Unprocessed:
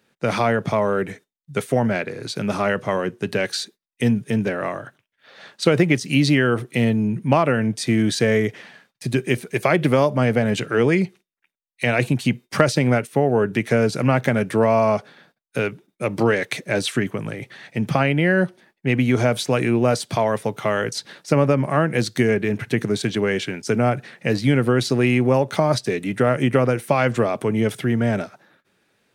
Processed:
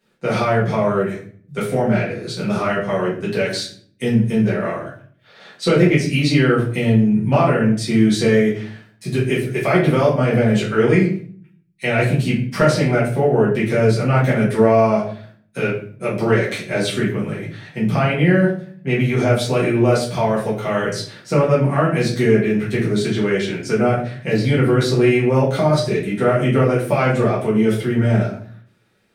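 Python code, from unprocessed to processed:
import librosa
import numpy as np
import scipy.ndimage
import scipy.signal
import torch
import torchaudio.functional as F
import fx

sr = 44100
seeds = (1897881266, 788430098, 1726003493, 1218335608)

y = fx.room_shoebox(x, sr, seeds[0], volume_m3=54.0, walls='mixed', distance_m=1.7)
y = y * librosa.db_to_amplitude(-7.5)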